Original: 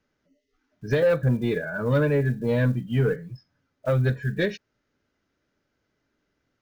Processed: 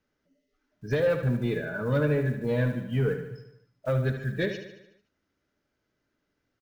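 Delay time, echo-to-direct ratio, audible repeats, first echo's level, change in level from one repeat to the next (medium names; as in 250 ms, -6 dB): 74 ms, -7.5 dB, 6, -9.0 dB, -5.0 dB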